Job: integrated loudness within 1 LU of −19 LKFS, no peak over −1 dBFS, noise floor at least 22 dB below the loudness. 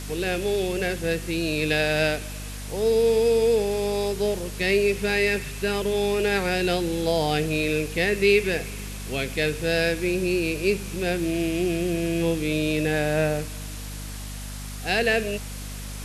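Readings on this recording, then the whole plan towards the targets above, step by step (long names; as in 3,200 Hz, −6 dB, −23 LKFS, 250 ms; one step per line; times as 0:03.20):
mains hum 50 Hz; hum harmonics up to 250 Hz; level of the hum −33 dBFS; background noise floor −35 dBFS; target noise floor −46 dBFS; integrated loudness −24.0 LKFS; sample peak −7.0 dBFS; target loudness −19.0 LKFS
→ mains-hum notches 50/100/150/200/250 Hz
broadband denoise 11 dB, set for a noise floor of −35 dBFS
level +5 dB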